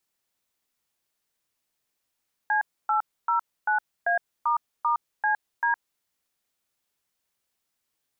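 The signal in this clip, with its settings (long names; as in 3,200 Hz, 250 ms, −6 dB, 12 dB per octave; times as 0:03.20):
touch tones "C809A**CD", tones 113 ms, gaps 278 ms, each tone −23 dBFS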